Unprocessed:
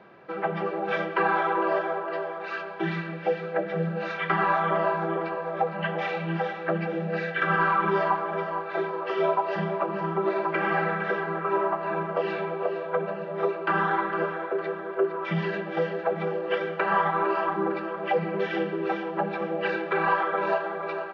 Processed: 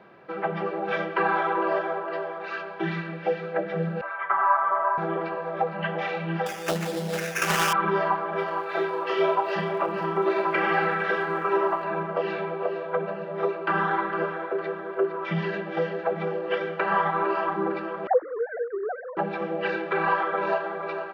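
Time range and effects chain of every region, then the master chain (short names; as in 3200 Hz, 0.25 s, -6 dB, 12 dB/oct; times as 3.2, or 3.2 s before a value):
4.01–4.98 Butterworth band-pass 1000 Hz, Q 1.1 + comb 7 ms, depth 94%
6.46–7.73 sample-rate reducer 4100 Hz + Doppler distortion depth 0.35 ms
8.35–11.83 high shelf 2500 Hz +8 dB + crackle 160/s -49 dBFS + doubler 28 ms -6.5 dB
18.07–19.17 sine-wave speech + steep low-pass 1800 Hz 72 dB/oct + notches 50/100/150/200/250/300 Hz
whole clip: dry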